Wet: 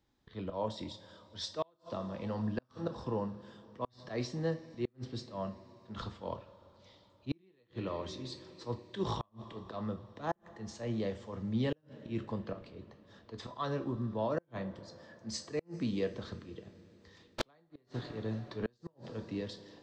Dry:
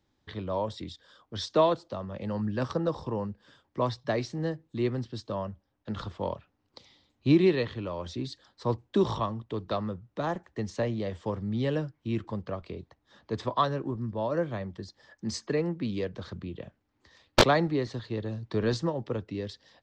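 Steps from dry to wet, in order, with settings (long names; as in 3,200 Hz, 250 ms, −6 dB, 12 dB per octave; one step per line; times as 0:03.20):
volume swells 125 ms
coupled-rooms reverb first 0.33 s, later 4.3 s, from −20 dB, DRR 7 dB
gate with flip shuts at −19 dBFS, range −39 dB
level −3.5 dB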